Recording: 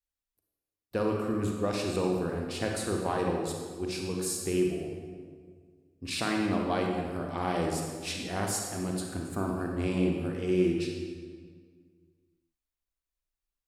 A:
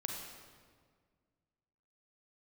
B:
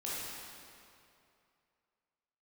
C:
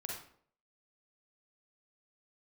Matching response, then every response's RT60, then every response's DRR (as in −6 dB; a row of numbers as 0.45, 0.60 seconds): A; 1.8, 2.6, 0.60 seconds; 0.5, −8.5, −2.0 decibels